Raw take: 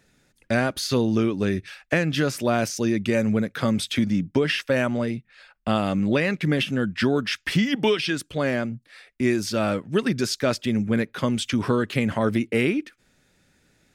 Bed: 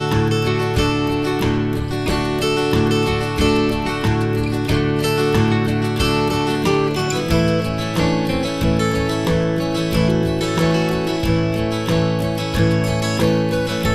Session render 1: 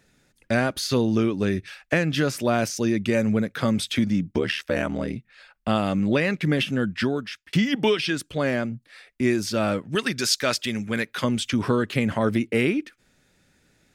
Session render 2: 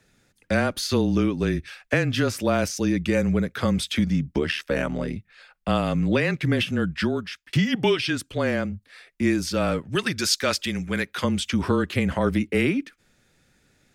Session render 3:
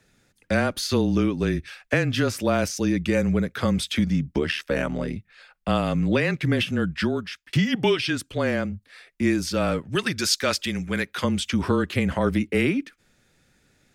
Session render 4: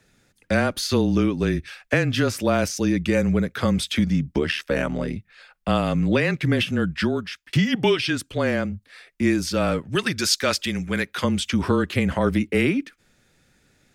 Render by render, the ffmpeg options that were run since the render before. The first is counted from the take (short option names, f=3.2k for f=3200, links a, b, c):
-filter_complex "[0:a]asettb=1/sr,asplit=3[a][b][c];[a]atrim=end=4.314[d];[b]atrim=start=4.31:end=5.16,asetpts=PTS-STARTPTS,afade=t=in:d=0.004:c=qsin,afade=t=out:st=0.846:d=0.004:c=qsin,aeval=exprs='val(0)*sin(2*PI*38*n/s)':c=same[e];[c]atrim=start=5.156[f];[d][e]acrossfade=d=0.004:c1=hsin:c2=qsin[g];[g][f]acrossfade=d=0.004:c1=qsin:c2=hsin,asettb=1/sr,asplit=3[h][i][j];[h]atrim=end=9.954[k];[i]atrim=start=9.95:end=11.24,asetpts=PTS-STARTPTS,afade=t=in:d=0.004:c=qsin,afade=t=out:st=1.286:d=0.004:c=qsin,tiltshelf=f=880:g=-6.5[l];[j]atrim=start=11.236[m];[k][l]acrossfade=d=0.004:c1=hsin:c2=qsin[n];[n][m]acrossfade=d=0.004:c1=qsin:c2=hsin,asplit=2[o][p];[o]atrim=end=7.53,asetpts=PTS-STARTPTS,afade=t=out:st=6.91:d=0.62[q];[p]atrim=start=7.53,asetpts=PTS-STARTPTS,afade=t=in:d=0.004:c=hsin[r];[q][r]concat=n=2:v=0:a=1"
-af "afreqshift=-24"
-af anull
-af "volume=1.5dB"